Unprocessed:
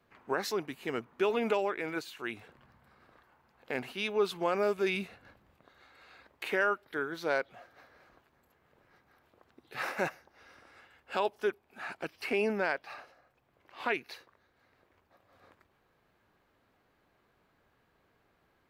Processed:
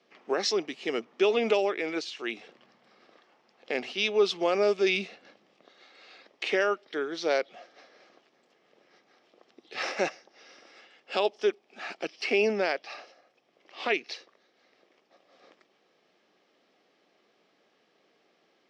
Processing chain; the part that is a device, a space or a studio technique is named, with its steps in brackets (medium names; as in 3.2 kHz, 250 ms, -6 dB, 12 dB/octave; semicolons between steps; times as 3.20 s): television speaker (cabinet simulation 220–6600 Hz, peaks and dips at 260 Hz -4 dB, 970 Hz -9 dB, 1.5 kHz -9 dB, 3.2 kHz +4 dB, 5.4 kHz +9 dB); trim +6 dB